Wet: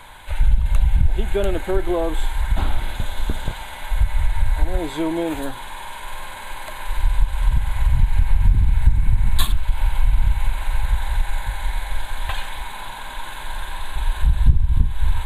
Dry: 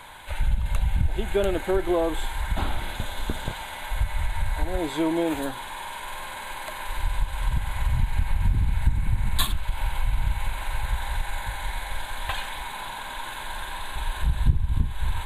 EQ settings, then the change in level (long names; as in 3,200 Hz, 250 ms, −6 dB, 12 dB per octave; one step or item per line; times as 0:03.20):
low-shelf EQ 73 Hz +9 dB
+1.0 dB